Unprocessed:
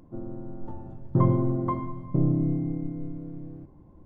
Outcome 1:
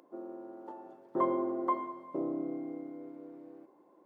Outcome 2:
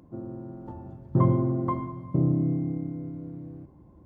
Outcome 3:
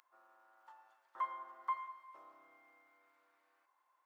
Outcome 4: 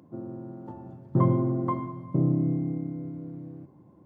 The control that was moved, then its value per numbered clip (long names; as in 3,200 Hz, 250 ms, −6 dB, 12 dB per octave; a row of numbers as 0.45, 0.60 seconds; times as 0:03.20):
high-pass filter, corner frequency: 360, 41, 1,200, 110 Hertz